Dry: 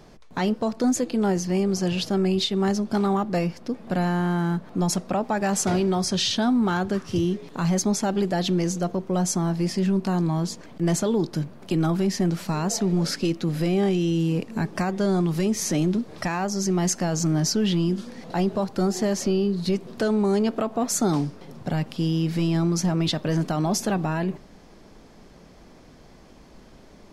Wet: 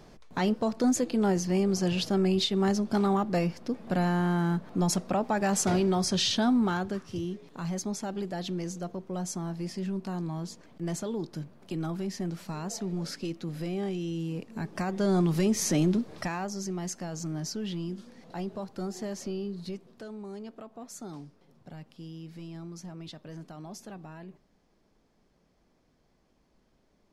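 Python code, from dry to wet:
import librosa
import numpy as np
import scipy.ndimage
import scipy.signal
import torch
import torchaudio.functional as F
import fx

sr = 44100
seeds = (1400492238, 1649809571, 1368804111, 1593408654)

y = fx.gain(x, sr, db=fx.line((6.56, -3.0), (7.14, -10.5), (14.49, -10.5), (15.18, -2.0), (15.92, -2.0), (16.81, -12.0), (19.6, -12.0), (20.04, -19.5)))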